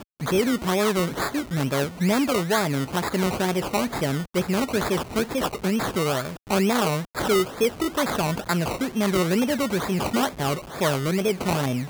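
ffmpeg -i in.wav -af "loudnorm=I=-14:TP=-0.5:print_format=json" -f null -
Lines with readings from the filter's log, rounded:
"input_i" : "-24.1",
"input_tp" : "-9.4",
"input_lra" : "0.5",
"input_thresh" : "-34.1",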